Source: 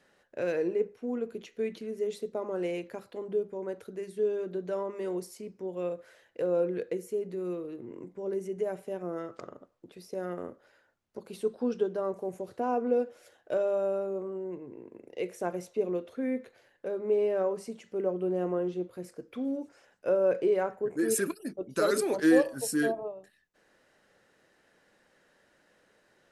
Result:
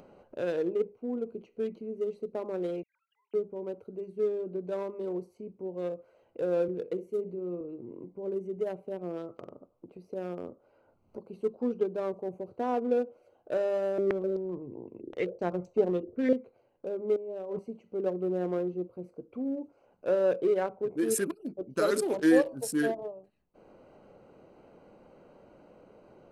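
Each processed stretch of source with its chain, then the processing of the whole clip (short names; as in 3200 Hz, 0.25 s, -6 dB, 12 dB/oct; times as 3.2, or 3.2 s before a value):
2.83–3.34 sine-wave speech + steep high-pass 1600 Hz
6.68–7.61 flutter echo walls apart 10.7 m, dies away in 0.3 s + three-band expander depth 40%
13.98–16.33 low shelf 170 Hz +11 dB + stepped low-pass 7.8 Hz 350–7100 Hz
17.16–17.59 LPF 2200 Hz + negative-ratio compressor -36 dBFS + flutter echo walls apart 11.1 m, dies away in 0.23 s
whole clip: Wiener smoothing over 25 samples; upward compressor, threshold -42 dBFS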